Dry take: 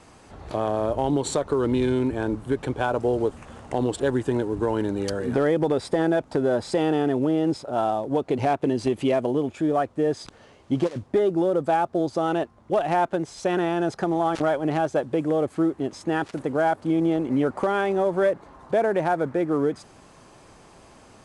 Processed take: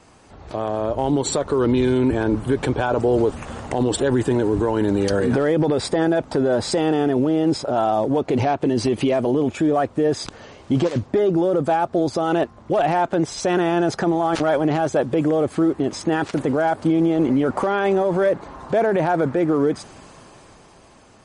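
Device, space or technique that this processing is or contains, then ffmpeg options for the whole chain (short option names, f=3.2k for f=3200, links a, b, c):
low-bitrate web radio: -af "dynaudnorm=f=220:g=13:m=13.5dB,alimiter=limit=-10.5dB:level=0:latency=1:release=22" -ar 44100 -c:a libmp3lame -b:a 40k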